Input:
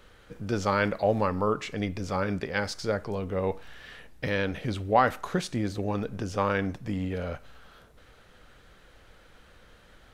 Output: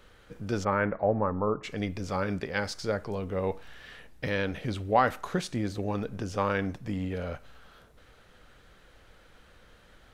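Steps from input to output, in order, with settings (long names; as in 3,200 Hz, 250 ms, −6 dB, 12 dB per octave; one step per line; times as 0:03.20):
0:00.63–0:01.63: low-pass filter 2,400 Hz → 1,100 Hz 24 dB per octave
level −1.5 dB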